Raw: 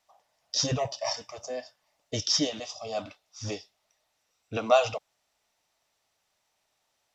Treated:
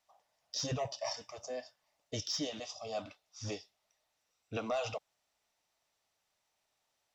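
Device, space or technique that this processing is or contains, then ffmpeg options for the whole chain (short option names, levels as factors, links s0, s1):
soft clipper into limiter: -af "asoftclip=type=tanh:threshold=0.224,alimiter=limit=0.0841:level=0:latency=1:release=118,volume=0.531"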